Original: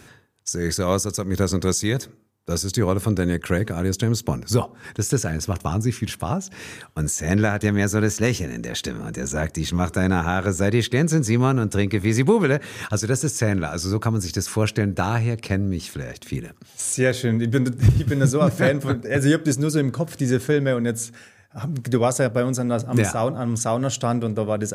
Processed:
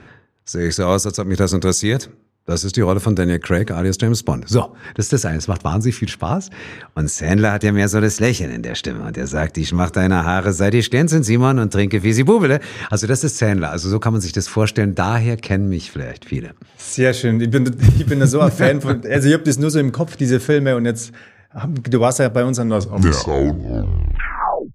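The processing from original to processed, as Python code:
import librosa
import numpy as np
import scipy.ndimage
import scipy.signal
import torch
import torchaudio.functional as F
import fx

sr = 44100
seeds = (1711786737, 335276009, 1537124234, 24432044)

y = fx.tape_stop_end(x, sr, length_s=2.23)
y = fx.env_lowpass(y, sr, base_hz=2400.0, full_db=-15.5)
y = y * librosa.db_to_amplitude(5.0)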